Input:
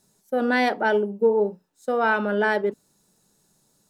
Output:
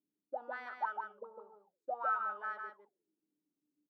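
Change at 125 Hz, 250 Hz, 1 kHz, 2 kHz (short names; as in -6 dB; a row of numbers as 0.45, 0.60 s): n/a, under -35 dB, -12.0 dB, -18.0 dB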